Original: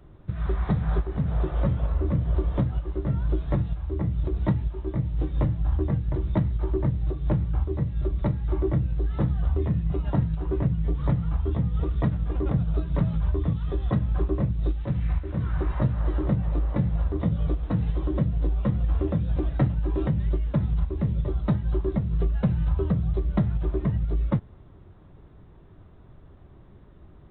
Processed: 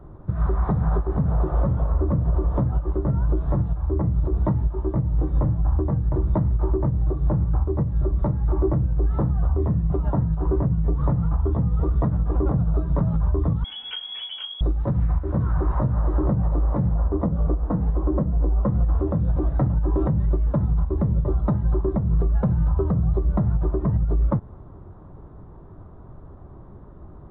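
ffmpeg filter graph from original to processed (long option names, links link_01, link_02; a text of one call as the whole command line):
ffmpeg -i in.wav -filter_complex "[0:a]asettb=1/sr,asplit=3[link_01][link_02][link_03];[link_01]atrim=end=13.644[link_04];[link_02]atrim=start=13.64:end=14.61,asetpts=PTS-STARTPTS,afade=type=in:duration=0.004:curve=qsin,afade=type=out:start_time=0.966:duration=0.004:curve=qsin,highpass=41,lowpass=frequency=2900:width_type=q:width=0.5098,lowpass=frequency=2900:width_type=q:width=0.6013,lowpass=frequency=2900:width_type=q:width=0.9,lowpass=frequency=2900:width_type=q:width=2.563,afreqshift=-3400[link_05];[link_03]atrim=start=14.606[link_06];[link_04][link_05]acrossfade=duration=0.004:curve1=hsin:curve2=qsin[link_07];[link_07][link_06]acrossfade=duration=0.004:curve1=qsin:curve2=hsin,asettb=1/sr,asplit=3[link_08][link_09][link_10];[link_08]atrim=end=16.944[link_11];[link_09]atrim=start=16.94:end=18.68,asetpts=PTS-STARTPTS,afade=type=in:duration=0.004:curve=qsin,afade=type=out:start_time=1.736:duration=0.004:curve=qsin,lowpass=frequency=1700:poles=1,equalizer=frequency=110:width_type=o:width=0.79:gain=-9.5[link_12];[link_10]atrim=start=18.676[link_13];[link_11][link_12]acrossfade=duration=0.004:curve1=hsin:curve2=qsin[link_14];[link_14][link_13]acrossfade=duration=0.004:curve1=qsin:curve2=hsin,highshelf=frequency=1700:width_type=q:width=1.5:gain=-14,alimiter=limit=-20.5dB:level=0:latency=1:release=122,volume=7dB" out.wav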